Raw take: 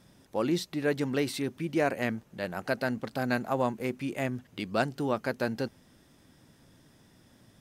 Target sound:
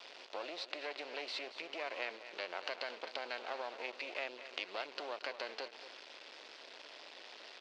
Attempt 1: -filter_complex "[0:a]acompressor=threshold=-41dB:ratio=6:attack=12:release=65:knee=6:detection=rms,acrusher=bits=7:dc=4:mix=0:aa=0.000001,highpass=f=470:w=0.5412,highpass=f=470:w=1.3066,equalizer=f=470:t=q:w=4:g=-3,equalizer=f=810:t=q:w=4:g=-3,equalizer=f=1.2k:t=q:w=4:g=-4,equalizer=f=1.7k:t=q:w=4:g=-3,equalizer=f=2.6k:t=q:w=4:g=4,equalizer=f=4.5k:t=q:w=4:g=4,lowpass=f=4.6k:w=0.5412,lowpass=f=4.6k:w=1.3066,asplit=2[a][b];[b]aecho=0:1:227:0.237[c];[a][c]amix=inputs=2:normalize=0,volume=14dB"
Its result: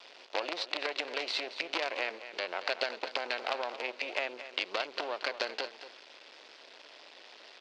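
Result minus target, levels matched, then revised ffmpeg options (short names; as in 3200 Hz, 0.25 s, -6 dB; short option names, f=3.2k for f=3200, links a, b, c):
compressor: peak gain reduction -6 dB
-filter_complex "[0:a]acompressor=threshold=-48.5dB:ratio=6:attack=12:release=65:knee=6:detection=rms,acrusher=bits=7:dc=4:mix=0:aa=0.000001,highpass=f=470:w=0.5412,highpass=f=470:w=1.3066,equalizer=f=470:t=q:w=4:g=-3,equalizer=f=810:t=q:w=4:g=-3,equalizer=f=1.2k:t=q:w=4:g=-4,equalizer=f=1.7k:t=q:w=4:g=-3,equalizer=f=2.6k:t=q:w=4:g=4,equalizer=f=4.5k:t=q:w=4:g=4,lowpass=f=4.6k:w=0.5412,lowpass=f=4.6k:w=1.3066,asplit=2[a][b];[b]aecho=0:1:227:0.237[c];[a][c]amix=inputs=2:normalize=0,volume=14dB"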